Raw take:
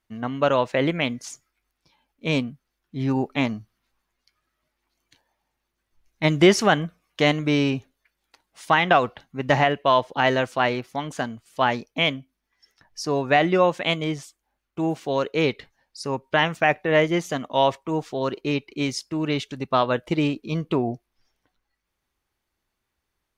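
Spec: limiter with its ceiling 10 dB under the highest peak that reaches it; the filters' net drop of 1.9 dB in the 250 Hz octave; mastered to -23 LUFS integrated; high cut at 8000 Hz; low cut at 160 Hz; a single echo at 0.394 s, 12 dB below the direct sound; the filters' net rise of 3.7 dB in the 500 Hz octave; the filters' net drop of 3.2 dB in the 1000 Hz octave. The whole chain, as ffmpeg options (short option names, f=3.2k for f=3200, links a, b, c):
-af "highpass=160,lowpass=8k,equalizer=f=250:t=o:g=-5,equalizer=f=500:t=o:g=8.5,equalizer=f=1k:t=o:g=-8.5,alimiter=limit=-14dB:level=0:latency=1,aecho=1:1:394:0.251,volume=3dB"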